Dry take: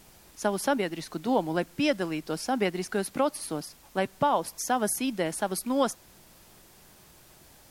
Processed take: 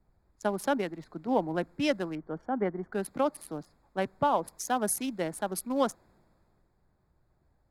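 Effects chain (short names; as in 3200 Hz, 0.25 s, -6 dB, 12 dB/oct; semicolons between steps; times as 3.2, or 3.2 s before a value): Wiener smoothing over 15 samples; 2.15–2.93 polynomial smoothing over 41 samples; three-band expander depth 40%; gain -2.5 dB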